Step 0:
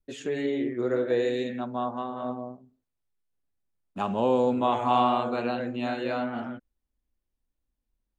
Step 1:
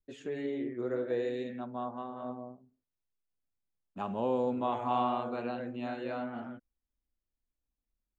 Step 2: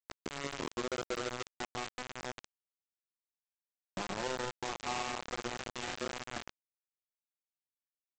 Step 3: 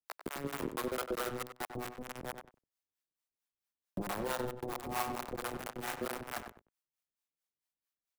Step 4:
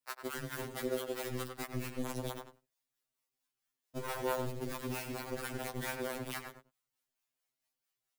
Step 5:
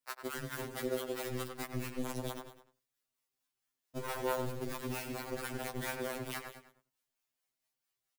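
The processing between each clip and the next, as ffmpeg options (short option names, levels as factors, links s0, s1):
-af "highshelf=f=3300:g=-8,volume=0.447"
-af "aecho=1:1:5.7:0.88,acompressor=threshold=0.0126:ratio=6,aresample=16000,acrusher=bits=5:mix=0:aa=0.000001,aresample=44100,volume=1.19"
-filter_complex "[0:a]acrossover=split=230|2300[s0][s1][s2];[s2]aeval=exprs='(mod(70.8*val(0)+1,2)-1)/70.8':c=same[s3];[s0][s1][s3]amix=inputs=3:normalize=0,acrossover=split=540[s4][s5];[s4]aeval=exprs='val(0)*(1-1/2+1/2*cos(2*PI*4.5*n/s))':c=same[s6];[s5]aeval=exprs='val(0)*(1-1/2-1/2*cos(2*PI*4.5*n/s))':c=same[s7];[s6][s7]amix=inputs=2:normalize=0,asplit=2[s8][s9];[s9]adelay=95,lowpass=f=2400:p=1,volume=0.398,asplit=2[s10][s11];[s11]adelay=95,lowpass=f=2400:p=1,volume=0.15[s12];[s8][s10][s12]amix=inputs=3:normalize=0,volume=1.88"
-af "acompressor=threshold=0.01:ratio=6,acrusher=bits=3:mode=log:mix=0:aa=0.000001,afftfilt=real='re*2.45*eq(mod(b,6),0)':imag='im*2.45*eq(mod(b,6),0)':win_size=2048:overlap=0.75,volume=2.37"
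-af "aecho=1:1:203:0.158"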